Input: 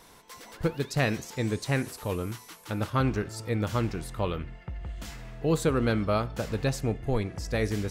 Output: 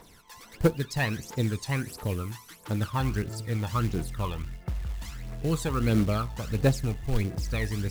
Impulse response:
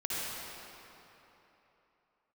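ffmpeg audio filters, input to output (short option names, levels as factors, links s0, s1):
-af "aphaser=in_gain=1:out_gain=1:delay=1.2:decay=0.66:speed=1.5:type=triangular,acrusher=bits=5:mode=log:mix=0:aa=0.000001,volume=0.668"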